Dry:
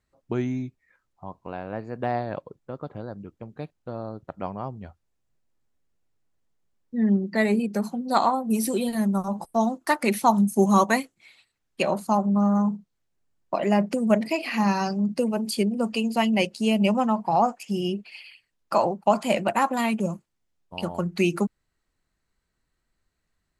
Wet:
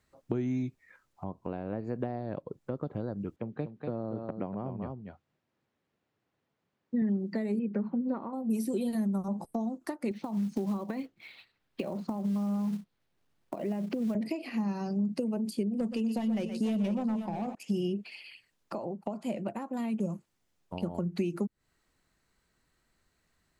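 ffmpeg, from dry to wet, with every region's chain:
-filter_complex "[0:a]asettb=1/sr,asplit=3[a][b][c];[a]atrim=end=3.364[d];[b]atrim=start=3.36:end=7.02,asetpts=PTS-STARTPTS,afade=t=in:d=0.004:c=qsin,afade=t=out:st=3.656:d=0.004:c=qsin,highpass=110,lowpass=3.5k,aecho=1:1:240:0.398,atrim=end_sample=161406[e];[c]atrim=start=7.016[f];[d][e]acrossfade=d=0.004:c1=hsin:c2=qsin[g];[g][f]acrossfade=d=0.004:c1=qsin:c2=hsin,asettb=1/sr,asplit=3[h][i][j];[h]atrim=end=7.594[k];[i]atrim=start=7.59:end=8.33,asetpts=PTS-STARTPTS,afade=t=in:d=0.004:c=qsin,afade=t=out:st=0.736:d=0.004:c=qsin,lowpass=f=2.2k:w=0.5412,lowpass=f=2.2k:w=1.3066,equalizer=f=720:t=o:w=0.28:g=-11[l];[j]atrim=start=8.326[m];[k][l]acrossfade=d=0.004:c1=hsin:c2=qsin[n];[n][m]acrossfade=d=0.004:c1=qsin:c2=hsin,asettb=1/sr,asplit=3[o][p][q];[o]atrim=end=10.114[r];[p]atrim=start=10.11:end=14.15,asetpts=PTS-STARTPTS,afade=t=in:d=0.004:c=qsin,afade=t=out:st=4.036:d=0.004:c=qsin,lowpass=f=4.5k:w=0.5412,lowpass=f=4.5k:w=1.3066,acompressor=threshold=-27dB:ratio=6:attack=3.2:release=140:knee=1:detection=peak,acrusher=bits=5:mode=log:mix=0:aa=0.000001[s];[q]atrim=start=14.146[t];[r][s]acrossfade=d=0.004:c1=hsin:c2=qsin[u];[u][t]acrossfade=d=0.004:c1=qsin:c2=hsin,asettb=1/sr,asplit=3[v][w][x];[v]atrim=end=15.694[y];[w]atrim=start=15.69:end=17.55,asetpts=PTS-STARTPTS,afade=t=in:d=0.004:c=qsin,afade=t=out:st=1.856:d=0.004:c=qsin,asoftclip=type=hard:threshold=-19.5dB,aecho=1:1:121|494:0.211|0.266,atrim=end_sample=82026[z];[x]atrim=start=17.546[aa];[y][z]acrossfade=d=0.004:c1=hsin:c2=qsin[ab];[ab][aa]acrossfade=d=0.004:c1=qsin:c2=hsin,acompressor=threshold=-32dB:ratio=6,lowshelf=f=65:g=-8.5,acrossover=split=500[ac][ad];[ad]acompressor=threshold=-52dB:ratio=4[ae];[ac][ae]amix=inputs=2:normalize=0,volume=5.5dB"

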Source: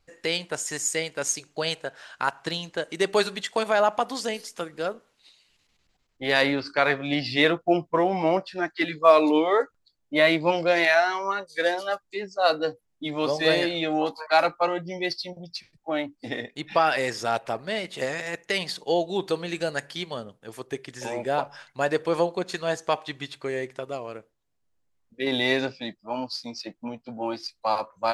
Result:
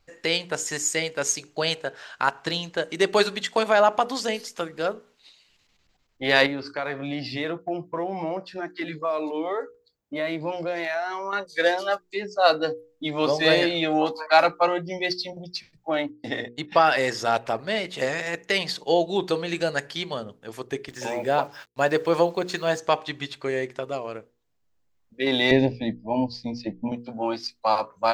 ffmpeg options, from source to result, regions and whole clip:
-filter_complex "[0:a]asettb=1/sr,asplit=3[a][b][c];[a]atrim=end=6.464[d];[b]atrim=start=6.46:end=11.33,asetpts=PTS-STARTPTS,afade=t=in:d=0.004:c=qsin,afade=t=out:st=4.866:d=0.004:c=qsin,equalizer=f=3.5k:t=o:w=2.5:g=-5.5,acompressor=threshold=-31dB:ratio=2.5:attack=3.2:release=140:knee=1:detection=peak,highpass=41[e];[c]atrim=start=11.326[f];[d][e]acrossfade=d=0.004:c1=hsin:c2=qsin[g];[g][f]acrossfade=d=0.004:c1=qsin:c2=hsin,asettb=1/sr,asplit=3[h][i][j];[h]atrim=end=15.944[k];[i]atrim=start=15.94:end=17.33,asetpts=PTS-STARTPTS,afade=t=in:d=0.004:c=qsin,afade=t=out:st=1.386:d=0.004:c=qsin,agate=range=-22dB:threshold=-42dB:ratio=16:release=100:detection=peak,bandreject=f=2.4k:w=14[l];[j]atrim=start=17.326[m];[k][l]acrossfade=d=0.004:c1=hsin:c2=qsin[n];[n][m]acrossfade=d=0.004:c1=qsin:c2=hsin,asettb=1/sr,asplit=3[o][p][q];[o]atrim=end=20.884[r];[p]atrim=start=20.88:end=22.8,asetpts=PTS-STARTPTS,afade=t=in:d=0.004:c=qsin,afade=t=out:st=1.916:d=0.004:c=qsin,highpass=48,agate=range=-33dB:threshold=-44dB:ratio=3:release=100:detection=peak,acrusher=bits=8:mix=0:aa=0.5[s];[q]atrim=start=22.796[t];[r][s]acrossfade=d=0.004:c1=hsin:c2=qsin[u];[u][t]acrossfade=d=0.004:c1=qsin:c2=hsin,asettb=1/sr,asplit=3[v][w][x];[v]atrim=end=25.514[y];[w]atrim=start=25.51:end=26.92,asetpts=PTS-STARTPTS,afade=t=in:d=0.004:c=qsin,afade=t=out:st=1.406:d=0.004:c=qsin,asuperstop=centerf=1300:order=8:qfactor=1.9,aemphasis=mode=reproduction:type=riaa[z];[x]atrim=start=26.916[aa];[y][z]acrossfade=d=0.004:c1=hsin:c2=qsin[ab];[ab][aa]acrossfade=d=0.004:c1=qsin:c2=hsin,equalizer=f=9.7k:t=o:w=0.37:g=-8.5,bandreject=f=60:t=h:w=6,bandreject=f=120:t=h:w=6,bandreject=f=180:t=h:w=6,bandreject=f=240:t=h:w=6,bandreject=f=300:t=h:w=6,bandreject=f=360:t=h:w=6,bandreject=f=420:t=h:w=6,bandreject=f=480:t=h:w=6,volume=3dB"

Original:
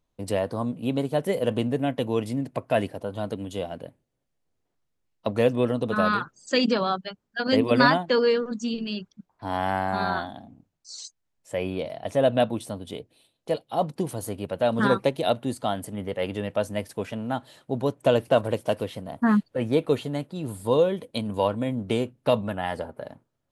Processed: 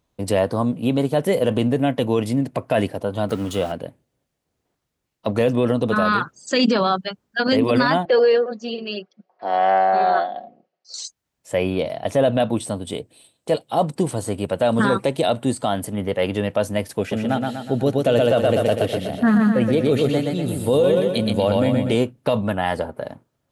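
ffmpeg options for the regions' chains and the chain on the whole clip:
-filter_complex "[0:a]asettb=1/sr,asplit=3[a][b][c];[a]atrim=end=3.294[d];[b]atrim=start=3.29:end=3.72,asetpts=PTS-STARTPTS,afade=t=in:d=0.004:c=qsin,afade=t=out:st=0.426:d=0.004:c=qsin,aeval=exprs='val(0)+0.5*0.00794*sgn(val(0))':c=same,equalizer=f=1.3k:w=7.9:g=10.5[e];[c]atrim=start=3.716[f];[d][e]acrossfade=d=0.004:c1=hsin:c2=qsin[g];[g][f]acrossfade=d=0.004:c1=qsin:c2=hsin,asettb=1/sr,asplit=3[h][i][j];[h]atrim=end=8.054[k];[i]atrim=start=8.05:end=10.94,asetpts=PTS-STARTPTS,afade=t=in:d=0.004:c=qsin,afade=t=out:st=2.886:d=0.004:c=qsin,highpass=460,equalizer=f=470:t=q:w=4:g=9,equalizer=f=680:t=q:w=4:g=8,equalizer=f=960:t=q:w=4:g=-9,equalizer=f=1.5k:t=q:w=4:g=-5,equalizer=f=2.4k:t=q:w=4:g=-4,equalizer=f=3.6k:t=q:w=4:g=-9,lowpass=f=4.3k:w=0.5412,lowpass=f=4.3k:w=1.3066,aecho=1:1:5.4:0.56,atrim=end_sample=127449[l];[j]atrim=start=10.936[m];[k][l]acrossfade=d=0.004:c1=hsin:c2=qsin[n];[n][m]acrossfade=d=0.004:c1=qsin:c2=hsin,asettb=1/sr,asplit=3[o][p][q];[o]atrim=end=12.564[r];[p]atrim=start=12.56:end=15.68,asetpts=PTS-STARTPTS,afade=t=in:d=0.004:c=qsin,afade=t=out:st=3.116:d=0.004:c=qsin,acrossover=split=6100[s][t];[t]acompressor=threshold=-51dB:ratio=4:attack=1:release=60[u];[s][u]amix=inputs=2:normalize=0,equalizer=f=8.2k:t=o:w=0.21:g=14.5[v];[q]atrim=start=15.676[w];[r][v]acrossfade=d=0.004:c1=hsin:c2=qsin[x];[x][w]acrossfade=d=0.004:c1=qsin:c2=hsin,asettb=1/sr,asplit=3[y][z][aa];[y]atrim=end=16.994[ab];[z]atrim=start=16.99:end=21.95,asetpts=PTS-STARTPTS,afade=t=in:d=0.004:c=qsin,afade=t=out:st=4.956:d=0.004:c=qsin,equalizer=f=1k:t=o:w=0.22:g=-15,aecho=1:1:122|244|366|488|610|732:0.631|0.315|0.158|0.0789|0.0394|0.0197,atrim=end_sample=218736[ac];[aa]atrim=start=21.946[ad];[ab][ac]acrossfade=d=0.004:c1=hsin:c2=qsin[ae];[ae][ad]acrossfade=d=0.004:c1=qsin:c2=hsin,highpass=41,alimiter=limit=-16.5dB:level=0:latency=1:release=23,volume=7.5dB"

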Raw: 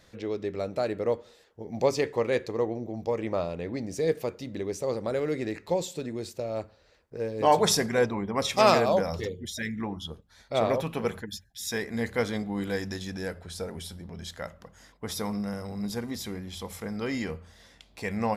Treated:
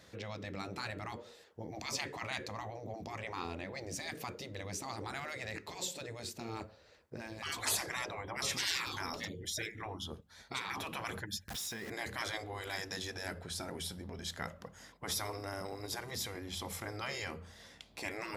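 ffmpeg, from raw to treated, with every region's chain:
-filter_complex "[0:a]asettb=1/sr,asplit=3[a][b][c];[a]atrim=end=11.484[d];[b]atrim=start=11.48:end=11.9,asetpts=PTS-STARTPTS,afade=t=in:d=0.004:c=qsin,afade=t=out:st=0.416:d=0.004:c=qsin,aeval=exprs='val(0)+0.5*0.0178*sgn(val(0))':c=same,acompressor=threshold=-37dB:ratio=16:attack=3.2:release=140:knee=1:detection=peak[e];[c]atrim=start=11.896[f];[d][e]acrossfade=d=0.004:c1=hsin:c2=qsin[g];[g][f]acrossfade=d=0.004:c1=qsin:c2=hsin,highpass=71,afftfilt=real='re*lt(hypot(re,im),0.0708)':imag='im*lt(hypot(re,im),0.0708)':win_size=1024:overlap=0.75"

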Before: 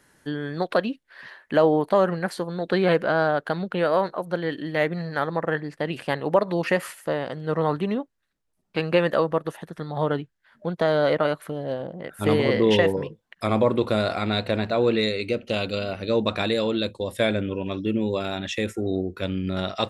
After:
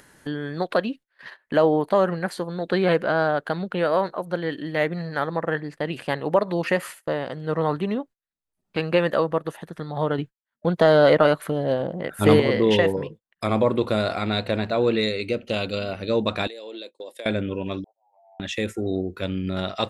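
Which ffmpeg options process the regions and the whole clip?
-filter_complex "[0:a]asettb=1/sr,asplit=3[a][b][c];[a]atrim=end=10.184[d];[b]atrim=start=10.18:end=12.4,asetpts=PTS-STARTPTS,afade=t=in:d=0.004:c=qsin,afade=t=out:st=2.216:d=0.004:c=qsin,agate=range=-33dB:threshold=-48dB:ratio=3:release=100:detection=peak,acontrast=50[e];[c]atrim=start=12.396[f];[d][e]acrossfade=d=0.004:c1=hsin:c2=qsin[g];[g][f]acrossfade=d=0.004:c1=qsin:c2=hsin,asettb=1/sr,asplit=3[h][i][j];[h]atrim=end=16.474[k];[i]atrim=start=16.47:end=17.26,asetpts=PTS-STARTPTS,afade=t=in:d=0.004:c=qsin,afade=t=out:st=0.786:d=0.004:c=qsin,highpass=f=350:w=0.5412,highpass=f=350:w=1.3066,equalizer=f=1.3k:t=o:w=0.68:g=-9.5,acompressor=threshold=-37dB:ratio=5:attack=3.2:release=140:knee=1:detection=peak[l];[j]atrim=start=17.256[m];[k][l]acrossfade=d=0.004:c1=hsin:c2=qsin[n];[n][m]acrossfade=d=0.004:c1=qsin:c2=hsin,asettb=1/sr,asplit=3[o][p][q];[o]atrim=end=17.844[r];[p]atrim=start=17.84:end=18.4,asetpts=PTS-STARTPTS,afade=t=in:d=0.004:c=qsin,afade=t=out:st=0.556:d=0.004:c=qsin,asuperpass=centerf=770:order=8:qfactor=3.2,acompressor=threshold=-44dB:ratio=6:attack=3.2:release=140:knee=1:detection=peak[s];[q]atrim=start=18.396[t];[r][s]acrossfade=d=0.004:c1=hsin:c2=qsin[u];[u][t]acrossfade=d=0.004:c1=qsin:c2=hsin,bandreject=f=5.5k:w=20,agate=range=-25dB:threshold=-41dB:ratio=16:detection=peak,acompressor=mode=upward:threshold=-30dB:ratio=2.5"

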